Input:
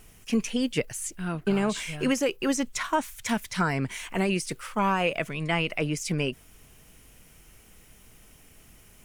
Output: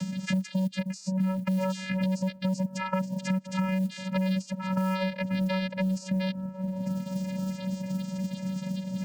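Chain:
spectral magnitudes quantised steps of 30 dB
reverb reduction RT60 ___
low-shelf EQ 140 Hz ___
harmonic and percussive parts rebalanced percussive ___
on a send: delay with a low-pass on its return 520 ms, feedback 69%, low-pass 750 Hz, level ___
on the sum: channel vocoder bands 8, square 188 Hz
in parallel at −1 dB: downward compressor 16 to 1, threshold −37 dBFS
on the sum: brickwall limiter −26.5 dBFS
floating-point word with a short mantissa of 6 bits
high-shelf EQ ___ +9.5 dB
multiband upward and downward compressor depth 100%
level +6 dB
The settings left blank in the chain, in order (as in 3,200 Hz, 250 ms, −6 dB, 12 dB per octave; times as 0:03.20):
1.2 s, +3 dB, −7 dB, −21 dB, 3,400 Hz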